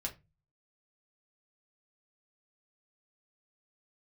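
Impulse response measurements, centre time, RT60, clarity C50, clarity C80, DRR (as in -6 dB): 10 ms, 0.25 s, 16.0 dB, 23.5 dB, 0.0 dB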